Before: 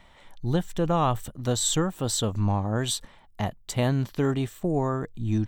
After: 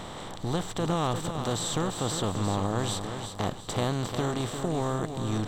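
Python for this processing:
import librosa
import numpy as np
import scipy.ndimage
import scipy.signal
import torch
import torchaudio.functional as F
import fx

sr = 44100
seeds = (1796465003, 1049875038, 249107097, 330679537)

y = fx.bin_compress(x, sr, power=0.4)
y = fx.high_shelf(y, sr, hz=7800.0, db=-6.0)
y = fx.echo_feedback(y, sr, ms=350, feedback_pct=39, wet_db=-8.0)
y = y * 10.0 ** (-8.0 / 20.0)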